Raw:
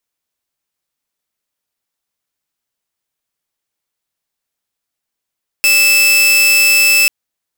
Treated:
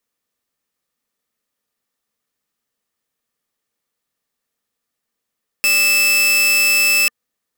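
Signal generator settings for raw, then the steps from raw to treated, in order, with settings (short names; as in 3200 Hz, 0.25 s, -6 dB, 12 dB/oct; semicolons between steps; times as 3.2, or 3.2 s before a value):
tone saw 2630 Hz -5 dBFS 1.44 s
limiter -9.5 dBFS; small resonant body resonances 230/460/1200/1800 Hz, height 8 dB, ringing for 30 ms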